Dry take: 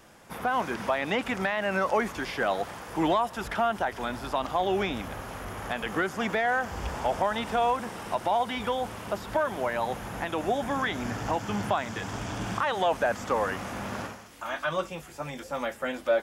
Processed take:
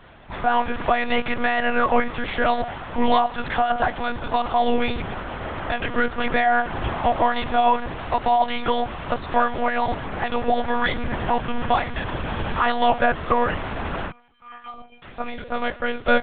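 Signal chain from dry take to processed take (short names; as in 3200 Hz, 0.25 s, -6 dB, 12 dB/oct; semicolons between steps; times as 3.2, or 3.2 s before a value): 14.11–15.03 metallic resonator 360 Hz, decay 0.35 s, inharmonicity 0.03; de-hum 233.2 Hz, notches 6; monotone LPC vocoder at 8 kHz 240 Hz; gain +7.5 dB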